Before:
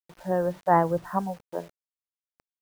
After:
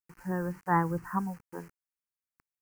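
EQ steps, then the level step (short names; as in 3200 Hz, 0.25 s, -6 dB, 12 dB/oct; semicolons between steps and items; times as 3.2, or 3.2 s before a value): fixed phaser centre 1500 Hz, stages 4; 0.0 dB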